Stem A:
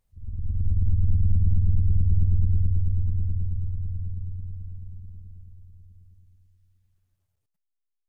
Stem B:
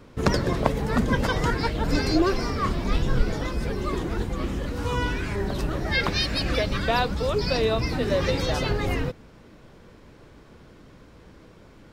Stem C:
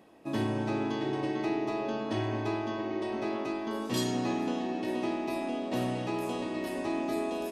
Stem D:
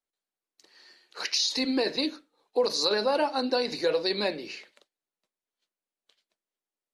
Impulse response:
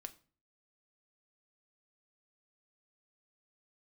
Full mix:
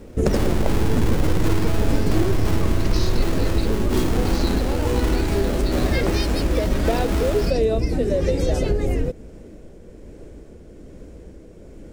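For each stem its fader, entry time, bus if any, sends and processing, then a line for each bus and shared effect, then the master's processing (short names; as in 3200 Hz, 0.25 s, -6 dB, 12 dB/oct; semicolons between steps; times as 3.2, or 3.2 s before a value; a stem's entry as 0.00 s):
-3.0 dB, 0.00 s, bus A, no send, full-wave rectifier
+2.5 dB, 0.00 s, bus A, no send, tremolo triangle 1.2 Hz, depth 35%; graphic EQ 125/250/500/1000/4000/8000 Hz -10/-4/-5/-5/-7/+8 dB
0.0 dB, 0.00 s, no bus, no send, half-waves squared off
-8.0 dB, 1.60 s, no bus, no send, dry
bus A: 0.0 dB, resonant low shelf 750 Hz +12 dB, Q 1.5; compressor 3:1, threshold -17 dBFS, peak gain reduction 11 dB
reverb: off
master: dry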